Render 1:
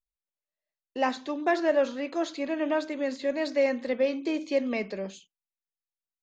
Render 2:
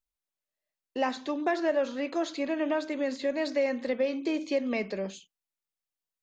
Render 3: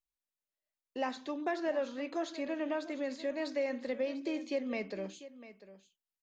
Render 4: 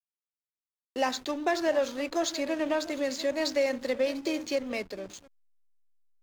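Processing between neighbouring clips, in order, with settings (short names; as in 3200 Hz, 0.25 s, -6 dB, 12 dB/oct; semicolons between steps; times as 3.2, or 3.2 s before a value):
compressor 2:1, threshold -28 dBFS, peak gain reduction 5.5 dB; gain +1.5 dB
echo 0.696 s -15.5 dB; gain -6.5 dB
ending faded out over 2.07 s; tone controls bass -7 dB, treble +14 dB; backlash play -44 dBFS; gain +7.5 dB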